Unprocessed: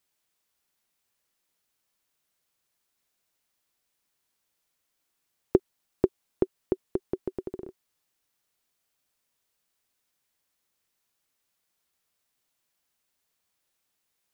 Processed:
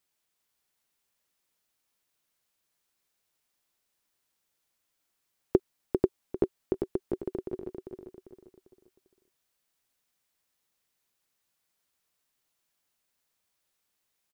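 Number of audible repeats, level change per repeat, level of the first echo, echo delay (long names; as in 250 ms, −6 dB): 4, −8.5 dB, −6.0 dB, 397 ms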